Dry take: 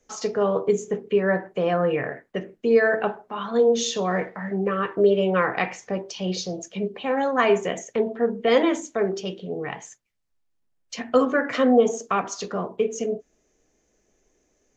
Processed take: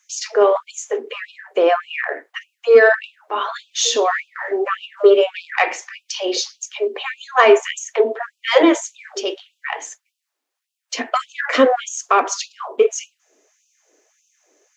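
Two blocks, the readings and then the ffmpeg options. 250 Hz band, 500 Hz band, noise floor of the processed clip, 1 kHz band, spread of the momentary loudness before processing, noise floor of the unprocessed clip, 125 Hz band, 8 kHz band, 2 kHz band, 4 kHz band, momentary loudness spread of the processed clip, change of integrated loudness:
0.0 dB, +4.5 dB, -80 dBFS, +6.5 dB, 12 LU, -70 dBFS, under -25 dB, n/a, +7.5 dB, +9.0 dB, 15 LU, +5.5 dB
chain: -af "acontrast=69,afftfilt=real='re*gte(b*sr/1024,240*pow(2500/240,0.5+0.5*sin(2*PI*1.7*pts/sr)))':imag='im*gte(b*sr/1024,240*pow(2500/240,0.5+0.5*sin(2*PI*1.7*pts/sr)))':win_size=1024:overlap=0.75,volume=3dB"

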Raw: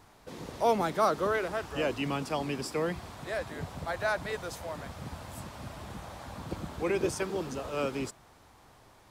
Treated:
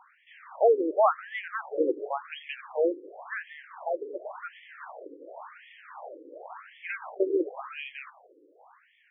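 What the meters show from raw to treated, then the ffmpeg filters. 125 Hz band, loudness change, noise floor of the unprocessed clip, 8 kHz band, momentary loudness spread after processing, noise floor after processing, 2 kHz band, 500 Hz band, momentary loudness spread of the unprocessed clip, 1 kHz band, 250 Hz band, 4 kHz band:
under -35 dB, +3.5 dB, -58 dBFS, under -35 dB, 22 LU, -62 dBFS, -1.0 dB, +3.5 dB, 16 LU, +0.5 dB, -1.0 dB, -7.0 dB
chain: -af "aemphasis=mode=reproduction:type=bsi,afftfilt=real='re*between(b*sr/1024,370*pow(2500/370,0.5+0.5*sin(2*PI*0.92*pts/sr))/1.41,370*pow(2500/370,0.5+0.5*sin(2*PI*0.92*pts/sr))*1.41)':imag='im*between(b*sr/1024,370*pow(2500/370,0.5+0.5*sin(2*PI*0.92*pts/sr))/1.41,370*pow(2500/370,0.5+0.5*sin(2*PI*0.92*pts/sr))*1.41)':win_size=1024:overlap=0.75,volume=6.5dB"

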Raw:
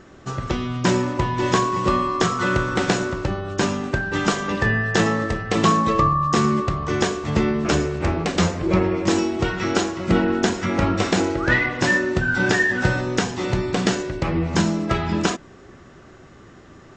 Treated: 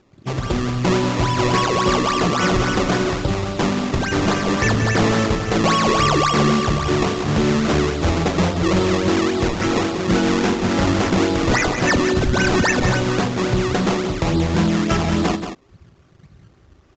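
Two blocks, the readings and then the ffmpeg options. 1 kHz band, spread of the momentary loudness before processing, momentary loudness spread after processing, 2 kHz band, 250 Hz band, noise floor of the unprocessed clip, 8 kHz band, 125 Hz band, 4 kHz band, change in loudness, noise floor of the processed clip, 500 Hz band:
+2.0 dB, 5 LU, 4 LU, 0.0 dB, +3.0 dB, -46 dBFS, +2.5 dB, +3.5 dB, +4.5 dB, +2.5 dB, -52 dBFS, +3.0 dB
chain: -filter_complex "[0:a]afwtdn=0.0282,asplit=2[a][b];[b]alimiter=limit=-11.5dB:level=0:latency=1,volume=1.5dB[c];[a][c]amix=inputs=2:normalize=0,acrusher=samples=20:mix=1:aa=0.000001:lfo=1:lforange=20:lforate=3.6,asoftclip=type=tanh:threshold=-9.5dB,asplit=2[d][e];[e]aecho=0:1:180:0.376[f];[d][f]amix=inputs=2:normalize=0,aresample=16000,aresample=44100,volume=-1.5dB"

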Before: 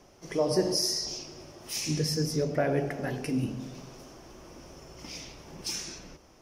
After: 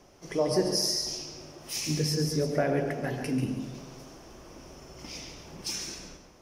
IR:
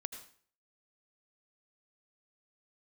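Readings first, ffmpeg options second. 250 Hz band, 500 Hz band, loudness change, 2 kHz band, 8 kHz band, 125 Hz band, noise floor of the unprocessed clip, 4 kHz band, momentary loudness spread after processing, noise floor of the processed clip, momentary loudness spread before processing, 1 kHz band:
+0.5 dB, +0.5 dB, +0.5 dB, +0.5 dB, +0.5 dB, +0.5 dB, -57 dBFS, +0.5 dB, 22 LU, -55 dBFS, 22 LU, +1.0 dB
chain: -filter_complex "[0:a]asplit=2[a][b];[1:a]atrim=start_sample=2205,adelay=140[c];[b][c]afir=irnorm=-1:irlink=0,volume=-6dB[d];[a][d]amix=inputs=2:normalize=0"

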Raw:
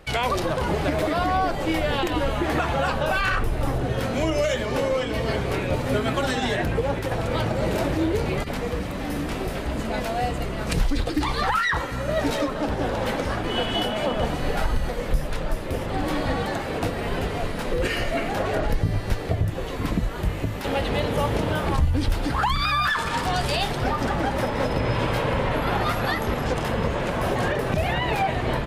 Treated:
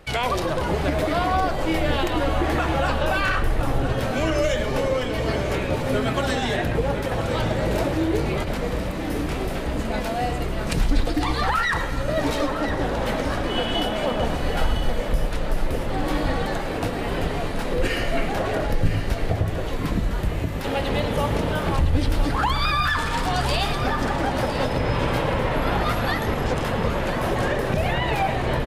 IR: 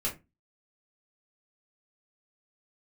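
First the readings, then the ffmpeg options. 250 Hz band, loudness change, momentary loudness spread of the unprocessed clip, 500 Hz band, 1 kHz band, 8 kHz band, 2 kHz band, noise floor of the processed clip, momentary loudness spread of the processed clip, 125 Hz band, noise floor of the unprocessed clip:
+1.0 dB, +1.0 dB, 5 LU, +1.0 dB, +0.5 dB, +0.5 dB, +0.5 dB, -27 dBFS, 4 LU, +1.0 dB, -30 dBFS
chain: -filter_complex "[0:a]aecho=1:1:1009:0.316,asplit=2[a][b];[1:a]atrim=start_sample=2205,asetrate=61740,aresample=44100,adelay=103[c];[b][c]afir=irnorm=-1:irlink=0,volume=-14dB[d];[a][d]amix=inputs=2:normalize=0"

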